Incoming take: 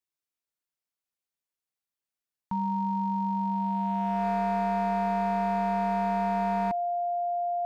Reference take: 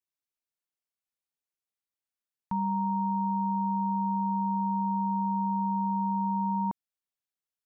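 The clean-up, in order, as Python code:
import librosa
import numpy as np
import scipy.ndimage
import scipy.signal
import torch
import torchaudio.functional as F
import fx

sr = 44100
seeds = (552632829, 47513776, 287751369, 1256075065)

y = fx.fix_declip(x, sr, threshold_db=-23.0)
y = fx.notch(y, sr, hz=700.0, q=30.0)
y = fx.fix_level(y, sr, at_s=6.81, step_db=6.5)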